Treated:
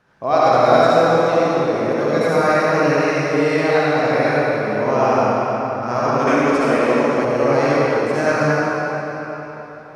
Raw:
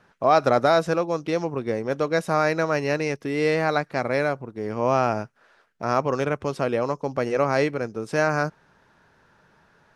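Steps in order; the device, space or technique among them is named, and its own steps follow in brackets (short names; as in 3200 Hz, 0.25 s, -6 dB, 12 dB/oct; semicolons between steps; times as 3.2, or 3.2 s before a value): cathedral (reverb RT60 4.1 s, pre-delay 55 ms, DRR -9.5 dB); 6.27–7.25 graphic EQ 125/250/2000/8000 Hz -8/+7/+7/+6 dB; gain -3 dB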